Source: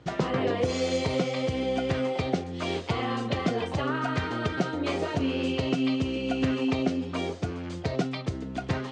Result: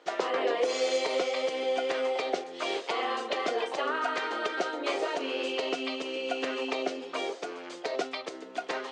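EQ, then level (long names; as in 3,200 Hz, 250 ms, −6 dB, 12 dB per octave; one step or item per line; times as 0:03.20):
high-pass filter 390 Hz 24 dB per octave
+1.0 dB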